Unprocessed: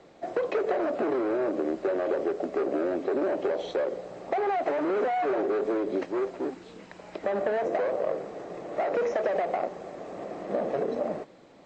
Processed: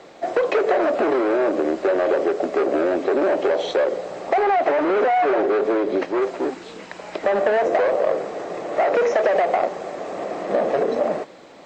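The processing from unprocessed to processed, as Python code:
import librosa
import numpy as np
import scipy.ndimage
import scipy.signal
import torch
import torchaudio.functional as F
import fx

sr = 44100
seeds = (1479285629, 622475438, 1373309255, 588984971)

p1 = fx.low_shelf(x, sr, hz=290.0, db=-10.5)
p2 = 10.0 ** (-31.0 / 20.0) * np.tanh(p1 / 10.0 ** (-31.0 / 20.0))
p3 = p1 + (p2 * librosa.db_to_amplitude(-7.0))
p4 = fx.air_absorb(p3, sr, metres=59.0, at=(4.43, 6.22))
y = p4 * librosa.db_to_amplitude(9.0)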